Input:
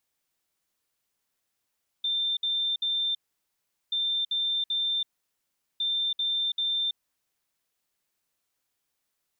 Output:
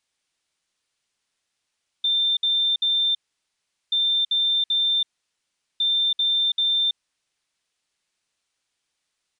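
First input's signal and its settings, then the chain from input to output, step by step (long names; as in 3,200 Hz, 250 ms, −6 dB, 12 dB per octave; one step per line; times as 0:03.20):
beeps in groups sine 3,580 Hz, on 0.33 s, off 0.06 s, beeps 3, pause 0.77 s, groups 3, −24.5 dBFS
parametric band 3,400 Hz +6.5 dB 2.4 octaves
downsampling to 22,050 Hz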